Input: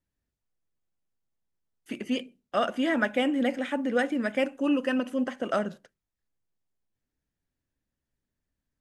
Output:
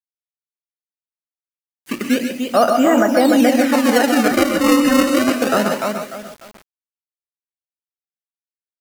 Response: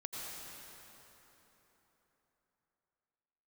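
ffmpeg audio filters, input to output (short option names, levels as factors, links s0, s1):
-filter_complex "[0:a]aecho=1:1:297|594|891|1188:0.447|0.134|0.0402|0.0121,adynamicequalizer=threshold=0.0126:dfrequency=790:dqfactor=1.2:tfrequency=790:tqfactor=1.2:attack=5:release=100:ratio=0.375:range=2:mode=boostabove:tftype=bell,acrossover=split=630|1400[s0][s1][s2];[s0]acrusher=samples=31:mix=1:aa=0.000001:lfo=1:lforange=49.6:lforate=0.26[s3];[s2]acompressor=threshold=0.00794:ratio=6[s4];[s3][s1][s4]amix=inputs=3:normalize=0,bandreject=f=3400:w=9.4[s5];[1:a]atrim=start_sample=2205,atrim=end_sample=4410,asetrate=29547,aresample=44100[s6];[s5][s6]afir=irnorm=-1:irlink=0,acrusher=bits=8:mix=0:aa=0.000001,alimiter=level_in=7.5:limit=0.891:release=50:level=0:latency=1,volume=0.708"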